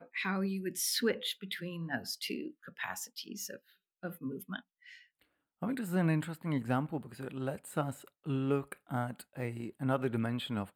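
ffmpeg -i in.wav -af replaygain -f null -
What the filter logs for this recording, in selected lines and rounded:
track_gain = +15.9 dB
track_peak = 0.093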